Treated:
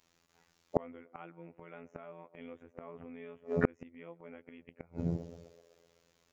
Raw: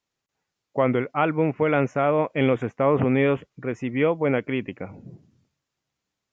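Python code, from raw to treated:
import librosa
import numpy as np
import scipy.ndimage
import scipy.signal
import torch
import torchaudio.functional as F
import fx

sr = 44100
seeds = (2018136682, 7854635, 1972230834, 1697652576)

y = fx.echo_banded(x, sr, ms=127, feedback_pct=66, hz=520.0, wet_db=-19.5)
y = fx.robotise(y, sr, hz=84.6)
y = fx.gate_flip(y, sr, shuts_db=-22.0, range_db=-38)
y = y * 10.0 ** (12.5 / 20.0)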